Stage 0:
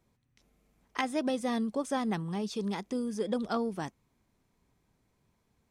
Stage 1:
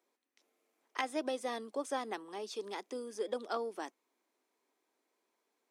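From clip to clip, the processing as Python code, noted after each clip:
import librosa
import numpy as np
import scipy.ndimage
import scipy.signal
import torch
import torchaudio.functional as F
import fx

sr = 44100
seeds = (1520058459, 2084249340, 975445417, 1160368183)

y = scipy.signal.sosfilt(scipy.signal.butter(6, 300.0, 'highpass', fs=sr, output='sos'), x)
y = F.gain(torch.from_numpy(y), -3.5).numpy()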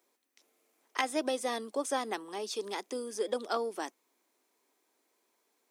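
y = fx.high_shelf(x, sr, hz=5400.0, db=7.5)
y = F.gain(torch.from_numpy(y), 4.0).numpy()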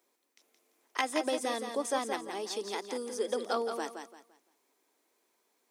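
y = fx.echo_feedback(x, sr, ms=171, feedback_pct=29, wet_db=-7.0)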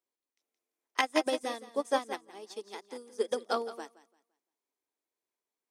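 y = fx.upward_expand(x, sr, threshold_db=-42.0, expansion=2.5)
y = F.gain(torch.from_numpy(y), 5.0).numpy()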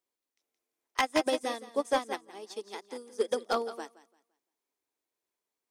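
y = np.clip(x, -10.0 ** (-21.0 / 20.0), 10.0 ** (-21.0 / 20.0))
y = F.gain(torch.from_numpy(y), 2.0).numpy()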